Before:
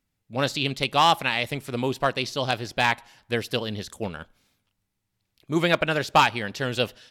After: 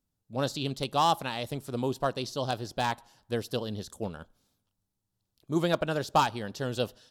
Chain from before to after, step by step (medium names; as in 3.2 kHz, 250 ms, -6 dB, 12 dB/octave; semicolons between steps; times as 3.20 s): peaking EQ 2.2 kHz -14 dB 0.93 oct; trim -3.5 dB